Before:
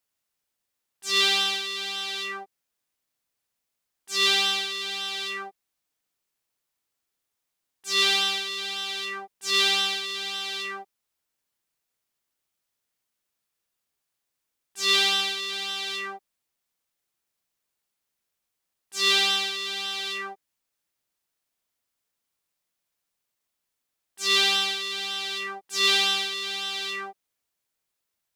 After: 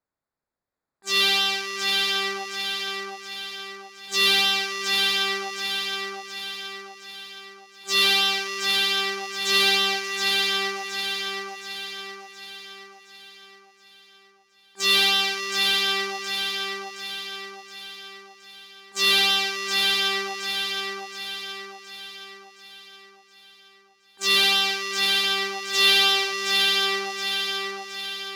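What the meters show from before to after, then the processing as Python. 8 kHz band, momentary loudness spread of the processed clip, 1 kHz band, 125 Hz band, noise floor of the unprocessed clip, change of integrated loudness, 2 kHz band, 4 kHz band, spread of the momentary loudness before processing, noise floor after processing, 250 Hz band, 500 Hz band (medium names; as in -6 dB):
+2.5 dB, 20 LU, +4.5 dB, no reading, -82 dBFS, +2.0 dB, +5.0 dB, +4.0 dB, 14 LU, -59 dBFS, +6.5 dB, +5.5 dB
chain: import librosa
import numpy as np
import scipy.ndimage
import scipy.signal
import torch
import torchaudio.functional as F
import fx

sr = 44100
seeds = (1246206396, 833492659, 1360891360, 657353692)

p1 = fx.wiener(x, sr, points=15)
p2 = fx.rider(p1, sr, range_db=4, speed_s=2.0)
p3 = p1 + F.gain(torch.from_numpy(p2), -2.5).numpy()
p4 = 10.0 ** (-10.5 / 20.0) * np.tanh(p3 / 10.0 ** (-10.5 / 20.0))
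y = fx.echo_feedback(p4, sr, ms=720, feedback_pct=50, wet_db=-3.5)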